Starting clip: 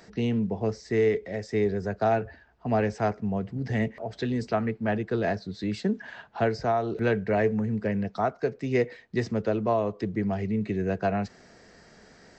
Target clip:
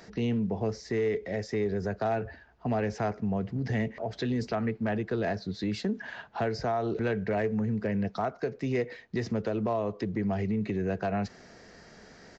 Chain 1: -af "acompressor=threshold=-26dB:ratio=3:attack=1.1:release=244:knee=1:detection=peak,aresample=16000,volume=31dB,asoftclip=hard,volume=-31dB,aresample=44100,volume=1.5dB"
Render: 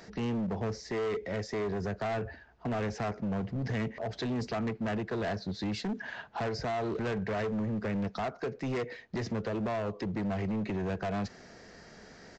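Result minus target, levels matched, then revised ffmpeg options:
overloaded stage: distortion +25 dB
-af "acompressor=threshold=-26dB:ratio=3:attack=1.1:release=244:knee=1:detection=peak,aresample=16000,volume=22.5dB,asoftclip=hard,volume=-22.5dB,aresample=44100,volume=1.5dB"

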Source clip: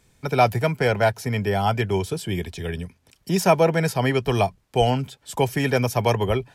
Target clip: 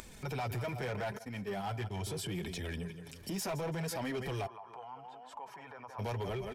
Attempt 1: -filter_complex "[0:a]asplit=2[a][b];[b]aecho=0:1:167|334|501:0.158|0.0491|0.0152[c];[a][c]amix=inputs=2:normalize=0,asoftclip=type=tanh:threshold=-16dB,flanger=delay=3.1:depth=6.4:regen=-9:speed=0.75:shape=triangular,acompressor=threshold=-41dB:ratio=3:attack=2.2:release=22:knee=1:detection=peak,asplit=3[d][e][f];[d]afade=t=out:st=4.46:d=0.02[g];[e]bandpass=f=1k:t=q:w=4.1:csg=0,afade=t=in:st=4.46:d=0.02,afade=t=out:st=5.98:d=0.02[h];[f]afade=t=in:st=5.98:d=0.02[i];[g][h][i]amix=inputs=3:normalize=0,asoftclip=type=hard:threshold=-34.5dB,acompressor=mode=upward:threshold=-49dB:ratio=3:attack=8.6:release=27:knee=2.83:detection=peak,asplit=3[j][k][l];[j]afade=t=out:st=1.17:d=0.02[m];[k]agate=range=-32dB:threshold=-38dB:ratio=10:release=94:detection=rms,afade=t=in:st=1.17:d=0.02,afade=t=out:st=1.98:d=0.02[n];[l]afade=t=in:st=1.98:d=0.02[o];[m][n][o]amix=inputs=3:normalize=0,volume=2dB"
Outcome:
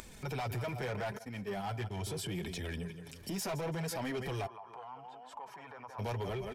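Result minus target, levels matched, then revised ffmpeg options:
soft clip: distortion +9 dB
-filter_complex "[0:a]asplit=2[a][b];[b]aecho=0:1:167|334|501:0.158|0.0491|0.0152[c];[a][c]amix=inputs=2:normalize=0,asoftclip=type=tanh:threshold=-8.5dB,flanger=delay=3.1:depth=6.4:regen=-9:speed=0.75:shape=triangular,acompressor=threshold=-41dB:ratio=3:attack=2.2:release=22:knee=1:detection=peak,asplit=3[d][e][f];[d]afade=t=out:st=4.46:d=0.02[g];[e]bandpass=f=1k:t=q:w=4.1:csg=0,afade=t=in:st=4.46:d=0.02,afade=t=out:st=5.98:d=0.02[h];[f]afade=t=in:st=5.98:d=0.02[i];[g][h][i]amix=inputs=3:normalize=0,asoftclip=type=hard:threshold=-34.5dB,acompressor=mode=upward:threshold=-49dB:ratio=3:attack=8.6:release=27:knee=2.83:detection=peak,asplit=3[j][k][l];[j]afade=t=out:st=1.17:d=0.02[m];[k]agate=range=-32dB:threshold=-38dB:ratio=10:release=94:detection=rms,afade=t=in:st=1.17:d=0.02,afade=t=out:st=1.98:d=0.02[n];[l]afade=t=in:st=1.98:d=0.02[o];[m][n][o]amix=inputs=3:normalize=0,volume=2dB"

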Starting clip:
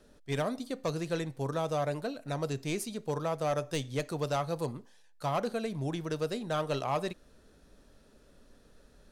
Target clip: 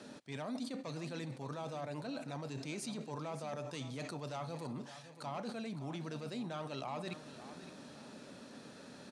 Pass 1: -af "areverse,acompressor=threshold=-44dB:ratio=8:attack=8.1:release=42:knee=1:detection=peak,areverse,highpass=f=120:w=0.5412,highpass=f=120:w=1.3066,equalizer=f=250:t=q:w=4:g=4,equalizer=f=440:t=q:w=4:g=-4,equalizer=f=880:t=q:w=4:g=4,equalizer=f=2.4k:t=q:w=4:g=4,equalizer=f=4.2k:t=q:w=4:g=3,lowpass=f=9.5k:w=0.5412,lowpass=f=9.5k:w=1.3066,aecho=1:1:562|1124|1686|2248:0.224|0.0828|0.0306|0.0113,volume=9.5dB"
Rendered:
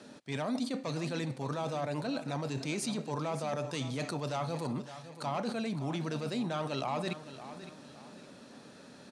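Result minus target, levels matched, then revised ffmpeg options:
compressor: peak gain reduction -7.5 dB
-af "areverse,acompressor=threshold=-52.5dB:ratio=8:attack=8.1:release=42:knee=1:detection=peak,areverse,highpass=f=120:w=0.5412,highpass=f=120:w=1.3066,equalizer=f=250:t=q:w=4:g=4,equalizer=f=440:t=q:w=4:g=-4,equalizer=f=880:t=q:w=4:g=4,equalizer=f=2.4k:t=q:w=4:g=4,equalizer=f=4.2k:t=q:w=4:g=3,lowpass=f=9.5k:w=0.5412,lowpass=f=9.5k:w=1.3066,aecho=1:1:562|1124|1686|2248:0.224|0.0828|0.0306|0.0113,volume=9.5dB"

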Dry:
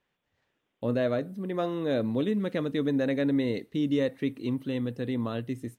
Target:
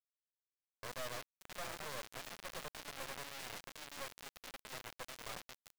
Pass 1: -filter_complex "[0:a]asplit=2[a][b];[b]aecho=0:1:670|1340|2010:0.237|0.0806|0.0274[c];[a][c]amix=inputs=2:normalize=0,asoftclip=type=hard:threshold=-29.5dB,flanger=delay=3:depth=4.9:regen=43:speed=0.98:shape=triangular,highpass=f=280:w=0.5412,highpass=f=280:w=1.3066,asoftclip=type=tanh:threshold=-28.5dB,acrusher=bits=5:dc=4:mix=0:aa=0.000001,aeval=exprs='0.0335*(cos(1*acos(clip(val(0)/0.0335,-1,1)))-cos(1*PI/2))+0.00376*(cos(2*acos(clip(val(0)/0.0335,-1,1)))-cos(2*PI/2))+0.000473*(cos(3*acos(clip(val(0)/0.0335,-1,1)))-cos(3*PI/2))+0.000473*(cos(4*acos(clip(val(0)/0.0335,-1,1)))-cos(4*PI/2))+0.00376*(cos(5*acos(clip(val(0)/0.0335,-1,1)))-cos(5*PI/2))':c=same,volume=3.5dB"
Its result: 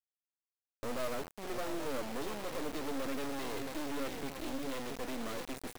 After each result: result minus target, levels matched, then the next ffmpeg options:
250 Hz band +12.5 dB; hard clip: distortion -5 dB
-filter_complex "[0:a]asplit=2[a][b];[b]aecho=0:1:670|1340|2010:0.237|0.0806|0.0274[c];[a][c]amix=inputs=2:normalize=0,asoftclip=type=hard:threshold=-29.5dB,flanger=delay=3:depth=4.9:regen=43:speed=0.98:shape=triangular,highpass=f=570:w=0.5412,highpass=f=570:w=1.3066,asoftclip=type=tanh:threshold=-28.5dB,acrusher=bits=5:dc=4:mix=0:aa=0.000001,aeval=exprs='0.0335*(cos(1*acos(clip(val(0)/0.0335,-1,1)))-cos(1*PI/2))+0.00376*(cos(2*acos(clip(val(0)/0.0335,-1,1)))-cos(2*PI/2))+0.000473*(cos(3*acos(clip(val(0)/0.0335,-1,1)))-cos(3*PI/2))+0.000473*(cos(4*acos(clip(val(0)/0.0335,-1,1)))-cos(4*PI/2))+0.00376*(cos(5*acos(clip(val(0)/0.0335,-1,1)))-cos(5*PI/2))':c=same,volume=3.5dB"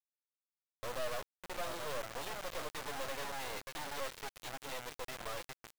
hard clip: distortion -5 dB
-filter_complex "[0:a]asplit=2[a][b];[b]aecho=0:1:670|1340|2010:0.237|0.0806|0.0274[c];[a][c]amix=inputs=2:normalize=0,asoftclip=type=hard:threshold=-40.5dB,flanger=delay=3:depth=4.9:regen=43:speed=0.98:shape=triangular,highpass=f=570:w=0.5412,highpass=f=570:w=1.3066,asoftclip=type=tanh:threshold=-28.5dB,acrusher=bits=5:dc=4:mix=0:aa=0.000001,aeval=exprs='0.0335*(cos(1*acos(clip(val(0)/0.0335,-1,1)))-cos(1*PI/2))+0.00376*(cos(2*acos(clip(val(0)/0.0335,-1,1)))-cos(2*PI/2))+0.000473*(cos(3*acos(clip(val(0)/0.0335,-1,1)))-cos(3*PI/2))+0.000473*(cos(4*acos(clip(val(0)/0.0335,-1,1)))-cos(4*PI/2))+0.00376*(cos(5*acos(clip(val(0)/0.0335,-1,1)))-cos(5*PI/2))':c=same,volume=3.5dB"

